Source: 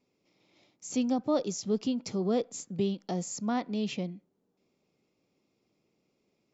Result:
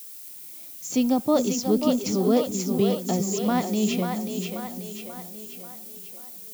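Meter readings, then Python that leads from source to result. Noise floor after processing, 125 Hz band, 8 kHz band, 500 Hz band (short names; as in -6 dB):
-42 dBFS, +8.0 dB, n/a, +8.0 dB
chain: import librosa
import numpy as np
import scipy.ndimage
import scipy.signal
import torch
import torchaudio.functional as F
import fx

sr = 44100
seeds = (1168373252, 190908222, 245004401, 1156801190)

y = fx.echo_split(x, sr, split_hz=330.0, low_ms=397, high_ms=537, feedback_pct=52, wet_db=-5)
y = fx.dmg_noise_colour(y, sr, seeds[0], colour='violet', level_db=-48.0)
y = y * 10.0 ** (6.5 / 20.0)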